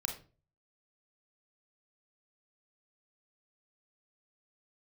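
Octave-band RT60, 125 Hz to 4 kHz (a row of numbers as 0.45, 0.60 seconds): 0.60, 0.45, 0.40, 0.35, 0.30, 0.25 seconds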